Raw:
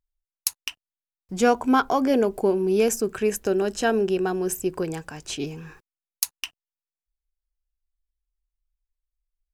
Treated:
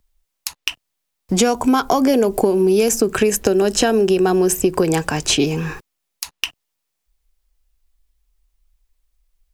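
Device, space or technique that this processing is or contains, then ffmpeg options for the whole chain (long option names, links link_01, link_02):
mastering chain: -filter_complex "[0:a]equalizer=frequency=1500:width_type=o:width=0.33:gain=-3,acrossover=split=220|4900[link_01][link_02][link_03];[link_01]acompressor=threshold=-41dB:ratio=4[link_04];[link_02]acompressor=threshold=-29dB:ratio=4[link_05];[link_03]acompressor=threshold=-36dB:ratio=4[link_06];[link_04][link_05][link_06]amix=inputs=3:normalize=0,acompressor=threshold=-30dB:ratio=3,alimiter=level_in=18.5dB:limit=-1dB:release=50:level=0:latency=1,volume=-1dB"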